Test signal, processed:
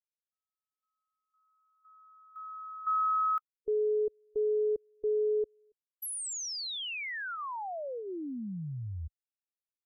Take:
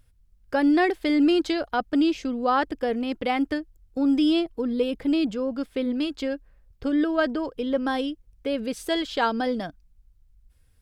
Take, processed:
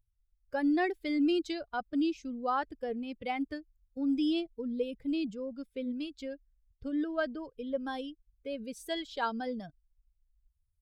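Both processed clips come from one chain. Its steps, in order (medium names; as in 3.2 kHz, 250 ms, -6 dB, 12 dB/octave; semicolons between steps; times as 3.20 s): expander on every frequency bin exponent 1.5; trim -7 dB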